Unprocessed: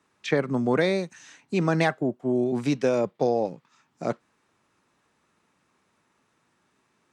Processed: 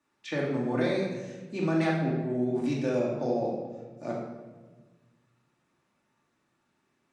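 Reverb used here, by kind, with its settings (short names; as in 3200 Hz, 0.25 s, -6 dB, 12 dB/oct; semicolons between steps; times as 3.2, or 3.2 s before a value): shoebox room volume 920 m³, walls mixed, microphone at 2.5 m; gain -11 dB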